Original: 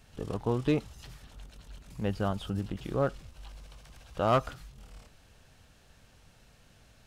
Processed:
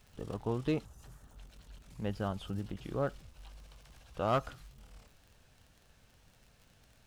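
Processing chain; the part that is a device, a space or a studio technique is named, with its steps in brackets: vinyl LP (wow and flutter; crackle 48/s -44 dBFS; white noise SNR 43 dB); 0.85–1.36 band shelf 3200 Hz -9.5 dB; gain -5 dB

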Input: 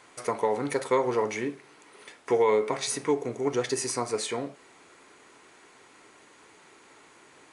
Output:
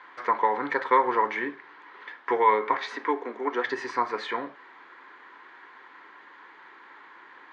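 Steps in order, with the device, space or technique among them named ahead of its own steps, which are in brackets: phone earpiece (speaker cabinet 370–3300 Hz, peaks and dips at 440 Hz -6 dB, 640 Hz -9 dB, 1000 Hz +7 dB, 1700 Hz +9 dB, 2600 Hz -7 dB); 2.77–3.66 elliptic high-pass 210 Hz; gain +4 dB

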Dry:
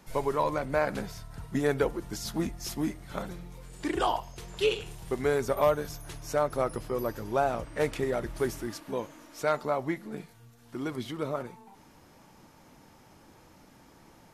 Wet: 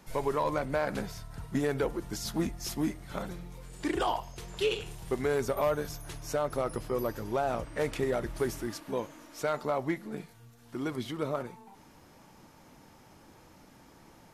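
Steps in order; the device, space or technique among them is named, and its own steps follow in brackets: limiter into clipper (limiter -19 dBFS, peak gain reduction 4.5 dB; hard clip -21 dBFS, distortion -26 dB)

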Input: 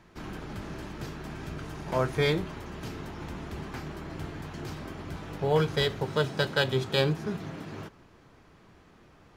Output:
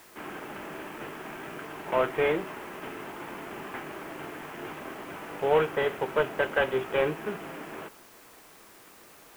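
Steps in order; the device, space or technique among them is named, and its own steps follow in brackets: army field radio (BPF 360–3200 Hz; CVSD 16 kbps; white noise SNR 24 dB); gain +4.5 dB

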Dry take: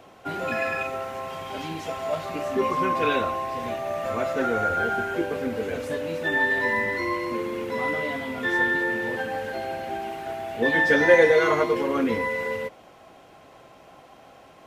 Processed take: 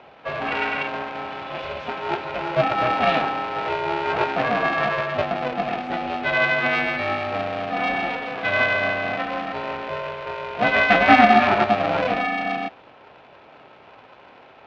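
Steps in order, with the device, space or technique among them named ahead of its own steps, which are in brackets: 3.56–4.25 comb 3 ms, depth 77%; ring modulator pedal into a guitar cabinet (polarity switched at an audio rate 250 Hz; speaker cabinet 85–4000 Hz, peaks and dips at 89 Hz -6 dB, 670 Hz +9 dB, 1400 Hz +3 dB, 2500 Hz +6 dB)

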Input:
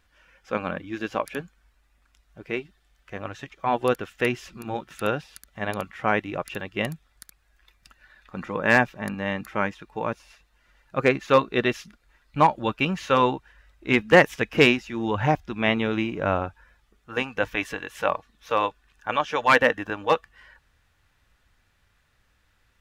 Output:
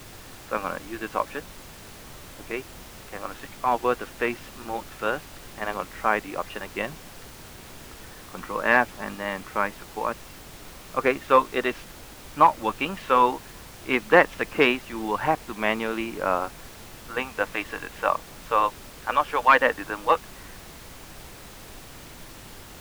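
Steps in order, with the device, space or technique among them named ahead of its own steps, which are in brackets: horn gramophone (BPF 250–3400 Hz; bell 1100 Hz +6 dB; wow and flutter; pink noise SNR 16 dB); gain -2 dB

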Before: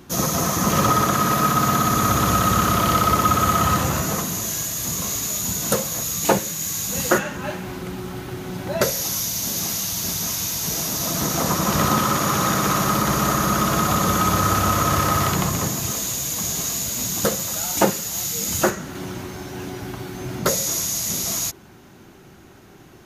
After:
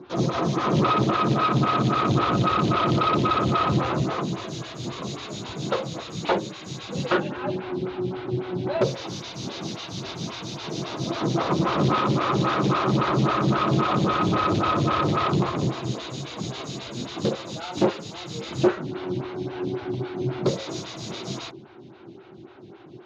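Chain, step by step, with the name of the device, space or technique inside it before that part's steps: vibe pedal into a guitar amplifier (photocell phaser 3.7 Hz; tube stage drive 19 dB, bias 0.45; speaker cabinet 93–4200 Hz, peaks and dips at 130 Hz +9 dB, 350 Hz +8 dB, 1800 Hz -5 dB, 3800 Hz +4 dB); gain +3 dB

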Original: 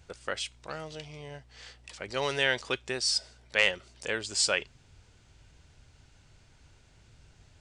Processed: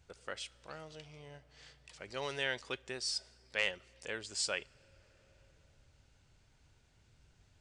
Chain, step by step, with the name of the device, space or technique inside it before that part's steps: compressed reverb return (on a send at -11 dB: reverb RT60 2.5 s, pre-delay 52 ms + compressor 5:1, threshold -46 dBFS, peak gain reduction 18.5 dB); on the sum: gain -9 dB

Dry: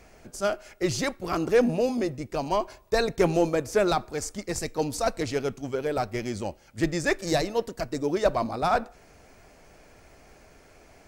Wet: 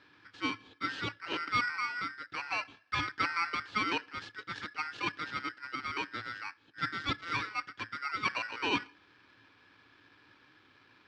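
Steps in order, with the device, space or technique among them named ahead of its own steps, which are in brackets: ring modulator pedal into a guitar cabinet (polarity switched at an audio rate 1700 Hz; speaker cabinet 83–3800 Hz, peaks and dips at 110 Hz +10 dB, 290 Hz +10 dB, 660 Hz -9 dB, 1100 Hz -5 dB, 2000 Hz -9 dB); gain -5 dB

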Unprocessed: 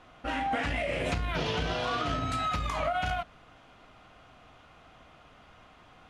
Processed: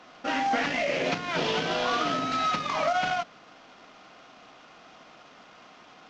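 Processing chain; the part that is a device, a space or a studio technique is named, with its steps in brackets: early wireless headset (HPF 180 Hz 24 dB/oct; CVSD 32 kbps); gain +4.5 dB

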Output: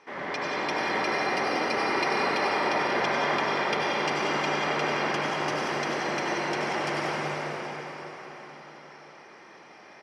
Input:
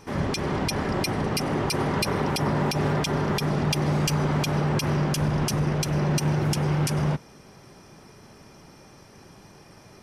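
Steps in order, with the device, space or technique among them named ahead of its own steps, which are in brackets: station announcement (BPF 460–3700 Hz; bell 2000 Hz +6.5 dB 0.41 oct; loudspeakers at several distances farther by 33 m -10 dB, 64 m -9 dB; reverb RT60 4.8 s, pre-delay 71 ms, DRR -5.5 dB); gain -4 dB

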